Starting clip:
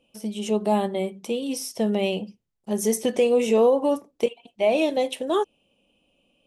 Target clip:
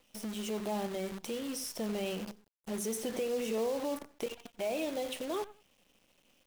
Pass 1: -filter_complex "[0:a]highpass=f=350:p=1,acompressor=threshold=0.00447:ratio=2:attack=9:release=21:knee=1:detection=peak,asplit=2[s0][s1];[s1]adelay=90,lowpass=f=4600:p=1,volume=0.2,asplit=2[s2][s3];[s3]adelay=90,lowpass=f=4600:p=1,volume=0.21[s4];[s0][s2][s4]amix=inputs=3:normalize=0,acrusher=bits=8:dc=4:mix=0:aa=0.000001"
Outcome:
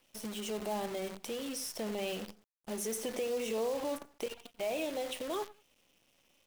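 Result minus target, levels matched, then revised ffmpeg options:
250 Hz band -2.5 dB
-filter_complex "[0:a]acompressor=threshold=0.00447:ratio=2:attack=9:release=21:knee=1:detection=peak,asplit=2[s0][s1];[s1]adelay=90,lowpass=f=4600:p=1,volume=0.2,asplit=2[s2][s3];[s3]adelay=90,lowpass=f=4600:p=1,volume=0.21[s4];[s0][s2][s4]amix=inputs=3:normalize=0,acrusher=bits=8:dc=4:mix=0:aa=0.000001"

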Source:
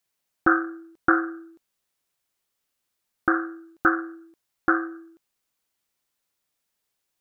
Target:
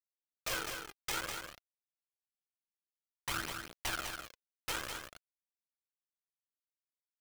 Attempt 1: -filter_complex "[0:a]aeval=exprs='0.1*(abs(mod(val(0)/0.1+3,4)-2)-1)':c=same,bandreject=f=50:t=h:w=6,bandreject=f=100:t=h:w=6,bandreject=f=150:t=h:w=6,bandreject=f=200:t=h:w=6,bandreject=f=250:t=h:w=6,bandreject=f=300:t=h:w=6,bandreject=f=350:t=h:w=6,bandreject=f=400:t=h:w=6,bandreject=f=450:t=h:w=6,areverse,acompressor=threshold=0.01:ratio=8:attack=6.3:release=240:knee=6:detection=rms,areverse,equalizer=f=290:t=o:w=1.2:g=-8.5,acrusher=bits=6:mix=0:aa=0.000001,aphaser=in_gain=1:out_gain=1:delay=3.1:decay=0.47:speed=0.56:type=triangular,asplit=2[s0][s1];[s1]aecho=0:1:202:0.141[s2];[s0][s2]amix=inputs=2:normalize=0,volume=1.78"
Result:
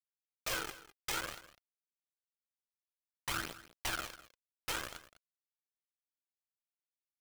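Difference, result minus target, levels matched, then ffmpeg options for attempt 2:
echo-to-direct -11 dB
-filter_complex "[0:a]aeval=exprs='0.1*(abs(mod(val(0)/0.1+3,4)-2)-1)':c=same,bandreject=f=50:t=h:w=6,bandreject=f=100:t=h:w=6,bandreject=f=150:t=h:w=6,bandreject=f=200:t=h:w=6,bandreject=f=250:t=h:w=6,bandreject=f=300:t=h:w=6,bandreject=f=350:t=h:w=6,bandreject=f=400:t=h:w=6,bandreject=f=450:t=h:w=6,areverse,acompressor=threshold=0.01:ratio=8:attack=6.3:release=240:knee=6:detection=rms,areverse,equalizer=f=290:t=o:w=1.2:g=-8.5,acrusher=bits=6:mix=0:aa=0.000001,aphaser=in_gain=1:out_gain=1:delay=3.1:decay=0.47:speed=0.56:type=triangular,asplit=2[s0][s1];[s1]aecho=0:1:202:0.501[s2];[s0][s2]amix=inputs=2:normalize=0,volume=1.78"

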